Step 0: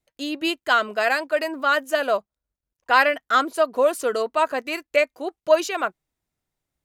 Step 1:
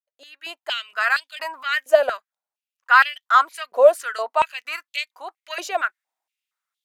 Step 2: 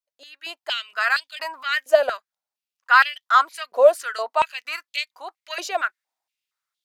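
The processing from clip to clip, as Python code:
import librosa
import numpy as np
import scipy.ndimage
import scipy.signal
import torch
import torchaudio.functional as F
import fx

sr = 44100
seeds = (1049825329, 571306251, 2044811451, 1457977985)

y1 = fx.fade_in_head(x, sr, length_s=1.03)
y1 = fx.filter_held_highpass(y1, sr, hz=4.3, low_hz=620.0, high_hz=3400.0)
y1 = y1 * librosa.db_to_amplitude(-3.0)
y2 = fx.peak_eq(y1, sr, hz=4700.0, db=4.5, octaves=0.75)
y2 = y2 * librosa.db_to_amplitude(-1.0)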